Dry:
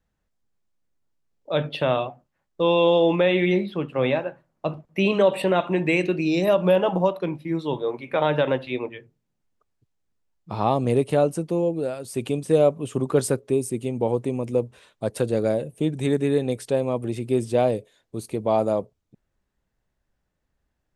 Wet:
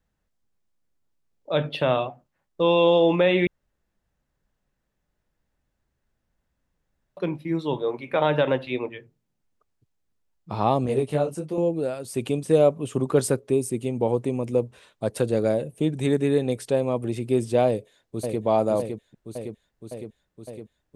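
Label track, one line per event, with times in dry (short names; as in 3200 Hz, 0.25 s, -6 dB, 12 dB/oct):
3.470000	7.170000	room tone
10.860000	11.580000	detuned doubles each way 37 cents
17.670000	18.420000	echo throw 0.56 s, feedback 75%, level -5 dB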